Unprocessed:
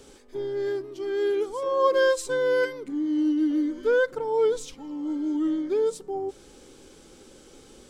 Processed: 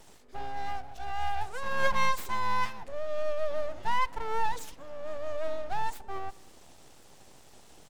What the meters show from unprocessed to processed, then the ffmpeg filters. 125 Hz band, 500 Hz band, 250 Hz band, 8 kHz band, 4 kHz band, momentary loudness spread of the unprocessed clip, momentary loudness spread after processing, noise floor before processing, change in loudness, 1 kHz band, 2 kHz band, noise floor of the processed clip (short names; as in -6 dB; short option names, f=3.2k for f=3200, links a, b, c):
n/a, -12.5 dB, -23.5 dB, -5.5 dB, -2.5 dB, 10 LU, 11 LU, -52 dBFS, -8.0 dB, +3.0 dB, -3.0 dB, -54 dBFS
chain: -filter_complex "[0:a]aeval=exprs='abs(val(0))':c=same,asplit=2[a][b];[b]adelay=192.4,volume=-25dB,highshelf=f=4k:g=-4.33[c];[a][c]amix=inputs=2:normalize=0,volume=-2.5dB"